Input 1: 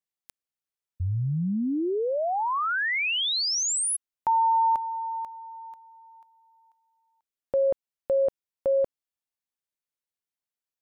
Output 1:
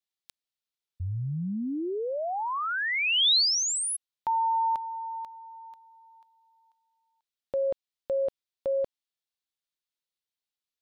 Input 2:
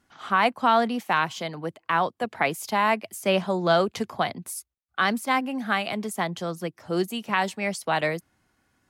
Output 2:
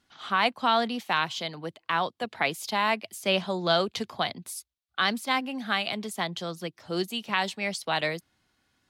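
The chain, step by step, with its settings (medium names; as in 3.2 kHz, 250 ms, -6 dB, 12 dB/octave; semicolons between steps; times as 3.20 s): peaking EQ 3.8 kHz +10 dB 1.1 oct; trim -4.5 dB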